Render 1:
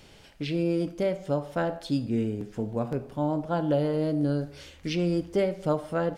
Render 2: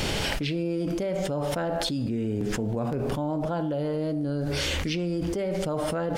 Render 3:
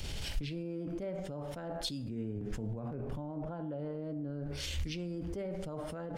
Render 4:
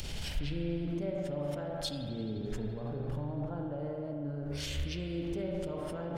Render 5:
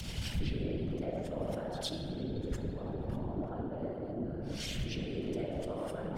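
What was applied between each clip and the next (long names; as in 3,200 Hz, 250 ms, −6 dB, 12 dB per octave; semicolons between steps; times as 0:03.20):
envelope flattener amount 100%; level −6.5 dB
low-shelf EQ 130 Hz +10 dB; brickwall limiter −23.5 dBFS, peak gain reduction 11 dB; multiband upward and downward expander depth 100%; level −7.5 dB
upward compression, threshold −43 dBFS; spring reverb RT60 3 s, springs 41 ms, chirp 45 ms, DRR 3 dB
tuned comb filter 100 Hz, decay 0.88 s, harmonics all, mix 60%; echo ahead of the sound 109 ms −16.5 dB; random phases in short frames; level +6 dB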